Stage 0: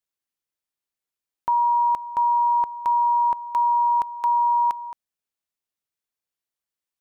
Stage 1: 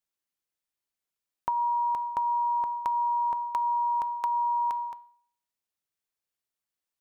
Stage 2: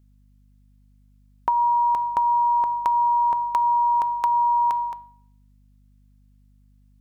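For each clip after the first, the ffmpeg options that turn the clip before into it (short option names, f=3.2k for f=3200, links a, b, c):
-af "bandreject=f=238.9:t=h:w=4,bandreject=f=477.8:t=h:w=4,bandreject=f=716.7:t=h:w=4,bandreject=f=955.6:t=h:w=4,bandreject=f=1.1945k:t=h:w=4,bandreject=f=1.4334k:t=h:w=4,bandreject=f=1.6723k:t=h:w=4,bandreject=f=1.9112k:t=h:w=4,bandreject=f=2.1501k:t=h:w=4,bandreject=f=2.389k:t=h:w=4,bandreject=f=2.6279k:t=h:w=4,bandreject=f=2.8668k:t=h:w=4,bandreject=f=3.1057k:t=h:w=4,bandreject=f=3.3446k:t=h:w=4,bandreject=f=3.5835k:t=h:w=4,bandreject=f=3.8224k:t=h:w=4,bandreject=f=4.0613k:t=h:w=4,bandreject=f=4.3002k:t=h:w=4,bandreject=f=4.5391k:t=h:w=4,acompressor=threshold=-24dB:ratio=6,volume=-1dB"
-af "aeval=exprs='val(0)+0.000794*(sin(2*PI*50*n/s)+sin(2*PI*2*50*n/s)/2+sin(2*PI*3*50*n/s)/3+sin(2*PI*4*50*n/s)/4+sin(2*PI*5*50*n/s)/5)':c=same,volume=7dB"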